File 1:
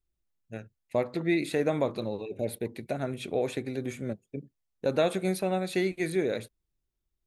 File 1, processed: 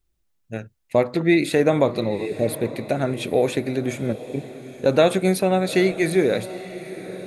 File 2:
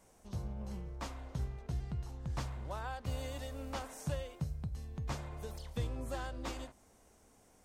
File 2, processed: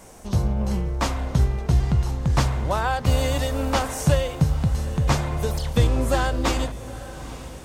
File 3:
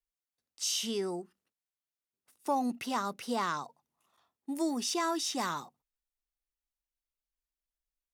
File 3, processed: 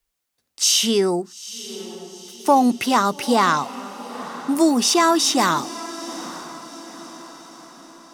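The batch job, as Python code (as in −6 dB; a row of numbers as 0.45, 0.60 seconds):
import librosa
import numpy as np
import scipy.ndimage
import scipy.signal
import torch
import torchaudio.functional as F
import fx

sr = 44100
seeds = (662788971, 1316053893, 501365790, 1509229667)

y = fx.echo_diffused(x, sr, ms=872, feedback_pct=50, wet_db=-15.0)
y = y * 10.0 ** (-22 / 20.0) / np.sqrt(np.mean(np.square(y)))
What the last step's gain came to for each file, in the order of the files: +9.0, +18.5, +15.0 decibels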